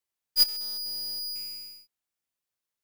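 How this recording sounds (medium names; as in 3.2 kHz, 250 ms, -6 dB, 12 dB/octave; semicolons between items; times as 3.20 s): noise floor -89 dBFS; spectral tilt +2.0 dB/octave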